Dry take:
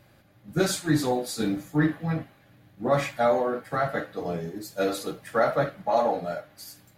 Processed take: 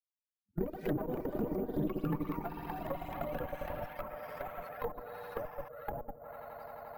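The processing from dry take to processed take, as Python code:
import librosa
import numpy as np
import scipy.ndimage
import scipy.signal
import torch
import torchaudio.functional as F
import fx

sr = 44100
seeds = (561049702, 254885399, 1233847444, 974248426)

p1 = fx.bin_expand(x, sr, power=3.0)
p2 = fx.highpass(p1, sr, hz=100.0, slope=6)
p3 = fx.high_shelf(p2, sr, hz=8400.0, db=-9.0)
p4 = p3 + fx.echo_swell(p3, sr, ms=87, loudest=5, wet_db=-10, dry=0)
p5 = fx.level_steps(p4, sr, step_db=15)
p6 = fx.cheby_harmonics(p5, sr, harmonics=(6,), levels_db=(-15,), full_scale_db=-20.0)
p7 = fx.env_lowpass_down(p6, sr, base_hz=420.0, full_db=-31.0)
p8 = fx.echo_pitch(p7, sr, ms=148, semitones=4, count=3, db_per_echo=-3.0)
p9 = np.repeat(p8[::3], 3)[:len(p8)]
y = p9 * librosa.db_to_amplitude(-2.0)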